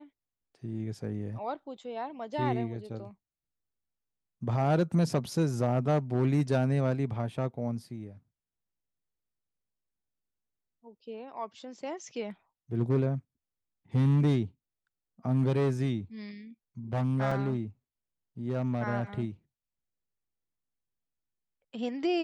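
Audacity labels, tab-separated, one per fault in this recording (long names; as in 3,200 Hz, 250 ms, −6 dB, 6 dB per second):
17.310000	17.310000	drop-out 4.3 ms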